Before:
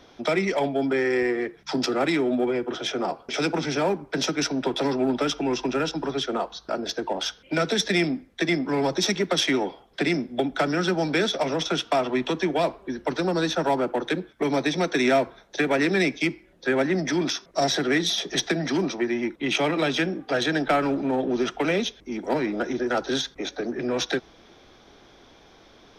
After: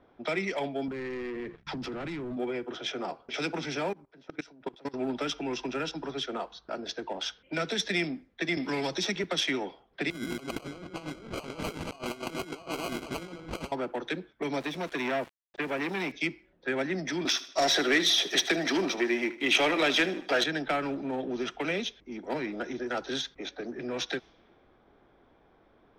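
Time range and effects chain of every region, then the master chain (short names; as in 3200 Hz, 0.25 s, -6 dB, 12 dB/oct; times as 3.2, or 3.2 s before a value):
0.88–2.37 sample leveller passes 3 + tone controls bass +11 dB, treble -7 dB + compressor 5:1, threshold -27 dBFS
3.9–4.94 high shelf 9700 Hz +5 dB + level quantiser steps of 23 dB
8.57–9.24 high shelf 8700 Hz -4 dB + three-band squash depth 70%
10.1–13.72 regenerating reverse delay 0.116 s, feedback 69%, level -9.5 dB + sample-rate reducer 1800 Hz + negative-ratio compressor -29 dBFS, ratio -0.5
14.6–16.12 high shelf 4700 Hz -10 dB + sample gate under -37 dBFS + core saturation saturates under 880 Hz
17.25–20.44 HPF 290 Hz + sample leveller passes 2 + feedback echo 77 ms, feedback 45%, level -16 dB
whole clip: low-pass opened by the level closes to 1500 Hz, open at -22.5 dBFS; dynamic EQ 2600 Hz, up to +5 dB, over -40 dBFS, Q 0.97; gain -8.5 dB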